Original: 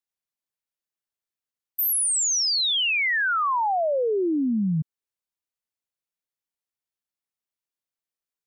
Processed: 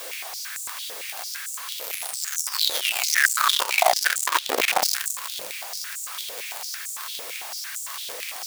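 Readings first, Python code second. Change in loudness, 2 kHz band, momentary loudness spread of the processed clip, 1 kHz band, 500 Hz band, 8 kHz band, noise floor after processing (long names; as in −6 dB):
−2.5 dB, +3.0 dB, 12 LU, +1.5 dB, −3.5 dB, +1.0 dB, −36 dBFS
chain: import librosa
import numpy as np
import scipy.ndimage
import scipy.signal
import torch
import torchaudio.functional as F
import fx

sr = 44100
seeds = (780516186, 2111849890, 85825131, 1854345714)

y = np.sign(x) * np.sqrt(np.mean(np.square(x)))
y = fx.echo_wet_highpass(y, sr, ms=391, feedback_pct=73, hz=3700.0, wet_db=-8)
y = fx.room_shoebox(y, sr, seeds[0], volume_m3=2300.0, walls='mixed', distance_m=5.5)
y = fx.quant_companded(y, sr, bits=2)
y = fx.filter_held_highpass(y, sr, hz=8.9, low_hz=500.0, high_hz=7400.0)
y = F.gain(torch.from_numpy(y), -11.0).numpy()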